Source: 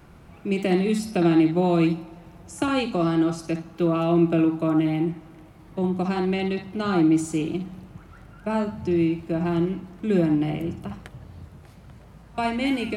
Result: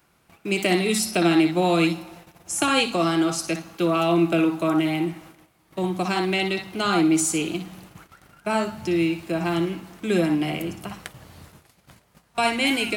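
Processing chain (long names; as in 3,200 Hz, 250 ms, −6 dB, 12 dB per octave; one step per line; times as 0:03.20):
noise gate −44 dBFS, range −14 dB
spectral tilt +3 dB per octave
level +4.5 dB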